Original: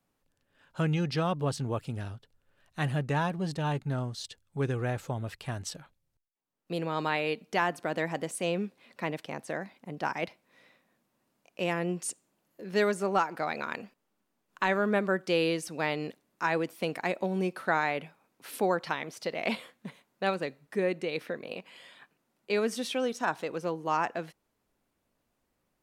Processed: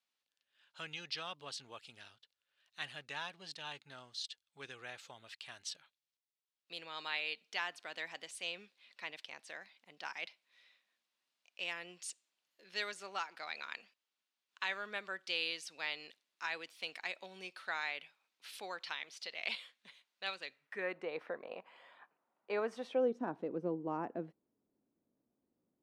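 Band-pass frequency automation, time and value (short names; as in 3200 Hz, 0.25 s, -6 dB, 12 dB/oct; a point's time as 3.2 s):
band-pass, Q 1.4
20.44 s 3700 Hz
21.08 s 920 Hz
22.78 s 920 Hz
23.19 s 280 Hz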